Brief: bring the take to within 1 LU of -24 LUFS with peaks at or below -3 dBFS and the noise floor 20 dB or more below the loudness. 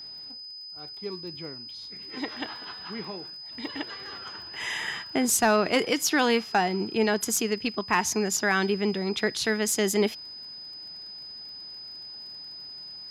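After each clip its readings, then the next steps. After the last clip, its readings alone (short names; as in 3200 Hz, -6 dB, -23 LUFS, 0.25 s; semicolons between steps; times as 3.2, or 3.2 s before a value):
ticks 29/s; steady tone 5000 Hz; tone level -39 dBFS; loudness -27.0 LUFS; peak -11.0 dBFS; loudness target -24.0 LUFS
-> de-click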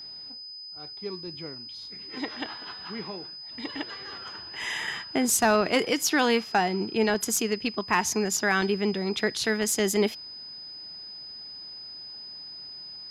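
ticks 0.076/s; steady tone 5000 Hz; tone level -39 dBFS
-> notch 5000 Hz, Q 30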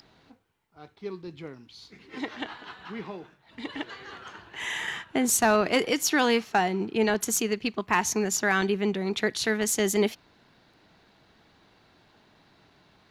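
steady tone none; loudness -26.0 LUFS; peak -11.0 dBFS; loudness target -24.0 LUFS
-> gain +2 dB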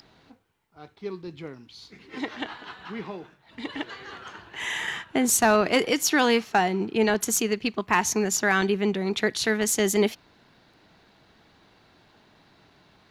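loudness -24.0 LUFS; peak -9.0 dBFS; noise floor -60 dBFS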